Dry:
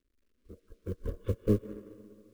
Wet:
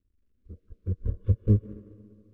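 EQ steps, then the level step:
low-pass filter 3,500 Hz 6 dB per octave
parametric band 110 Hz +9 dB 2 octaves
low-shelf EQ 190 Hz +12 dB
−8.0 dB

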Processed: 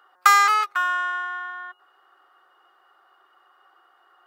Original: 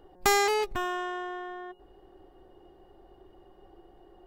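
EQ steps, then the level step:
high-pass with resonance 1,300 Hz, resonance Q 9
+2.5 dB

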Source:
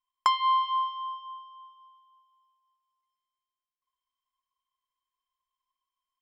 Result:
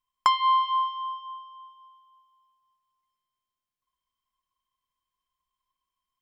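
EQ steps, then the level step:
bass and treble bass +9 dB, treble −1 dB
+2.5 dB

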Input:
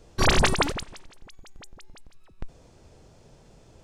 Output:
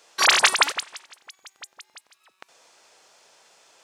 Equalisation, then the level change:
high-pass filter 1,100 Hz 12 dB per octave
+8.0 dB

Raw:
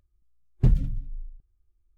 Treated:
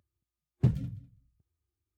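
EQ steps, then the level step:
high-pass filter 83 Hz 24 dB per octave
−2.5 dB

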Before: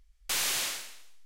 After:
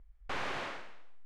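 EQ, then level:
low-pass filter 1,300 Hz 12 dB per octave
+4.0 dB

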